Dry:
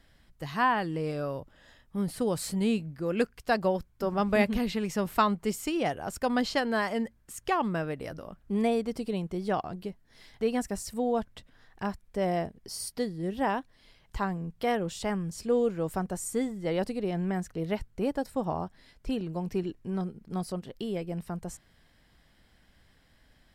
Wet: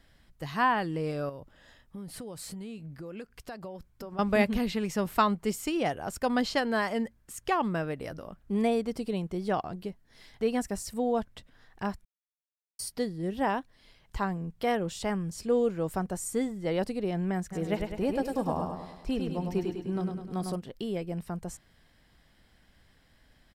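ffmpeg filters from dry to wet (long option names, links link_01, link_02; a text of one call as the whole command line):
ffmpeg -i in.wav -filter_complex "[0:a]asettb=1/sr,asplit=3[link_01][link_02][link_03];[link_01]atrim=end=1.294[link_04];[link_02]atrim=start=1.29:end=4.19,asetpts=PTS-STARTPTS,afade=type=in:duration=0.004:curve=qsin,afade=type=out:start_time=2.896:duration=0.004:curve=qsin,acompressor=threshold=-38dB:ratio=6:attack=3.2:release=140:knee=1:detection=peak[link_05];[link_03]atrim=start=4.186[link_06];[link_04][link_05]acrossfade=duration=0.004:curve1=hsin:curve2=qsin[link_07];[link_07][link_06]acrossfade=duration=0.004:curve1=qsin:curve2=hsin,asplit=3[link_08][link_09][link_10];[link_08]afade=type=out:start_time=17.51:duration=0.02[link_11];[link_09]aecho=1:1:102|204|306|408|510|612|714:0.562|0.298|0.158|0.0837|0.0444|0.0235|0.0125,afade=type=in:start_time=17.51:duration=0.02,afade=type=out:start_time=20.54:duration=0.02[link_12];[link_10]afade=type=in:start_time=20.54:duration=0.02[link_13];[link_11][link_12][link_13]amix=inputs=3:normalize=0,asplit=3[link_14][link_15][link_16];[link_14]atrim=end=12.05,asetpts=PTS-STARTPTS,afade=type=out:start_time=12.046:duration=0.004:curve=hsin[link_17];[link_15]atrim=start=12.05:end=12.79,asetpts=PTS-STARTPTS,volume=0[link_18];[link_16]atrim=start=12.79,asetpts=PTS-STARTPTS,afade=type=in:duration=0.004:curve=hsin[link_19];[link_17][link_18][link_19]concat=n=3:v=0:a=1" out.wav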